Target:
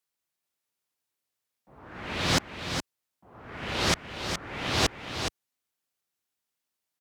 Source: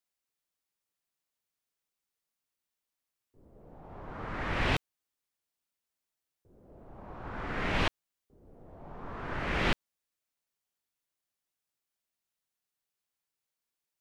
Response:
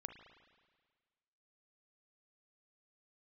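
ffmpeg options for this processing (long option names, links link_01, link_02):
-filter_complex "[0:a]asplit=2[link_01][link_02];[link_02]aecho=0:1:835:0.447[link_03];[link_01][link_03]amix=inputs=2:normalize=0,asetrate=88200,aresample=44100,highpass=69,volume=5.5dB"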